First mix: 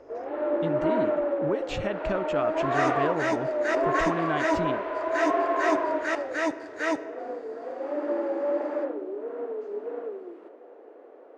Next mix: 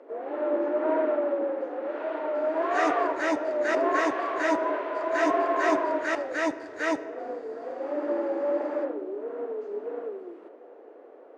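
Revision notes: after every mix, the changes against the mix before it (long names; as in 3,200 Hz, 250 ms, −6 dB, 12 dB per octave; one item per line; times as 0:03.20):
speech: muted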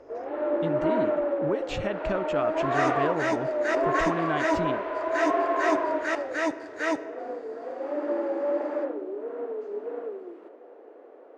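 speech: unmuted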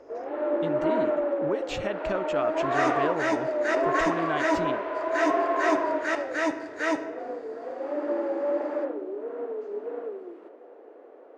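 speech: add bass and treble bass −5 dB, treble +3 dB
second sound: send +6.5 dB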